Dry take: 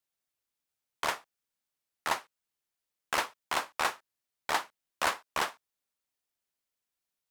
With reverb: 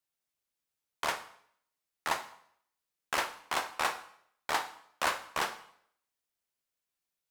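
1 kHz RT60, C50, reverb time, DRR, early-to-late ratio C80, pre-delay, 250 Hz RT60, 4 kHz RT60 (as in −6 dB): 0.65 s, 12.5 dB, 0.65 s, 8.0 dB, 16.0 dB, 6 ms, 0.65 s, 0.60 s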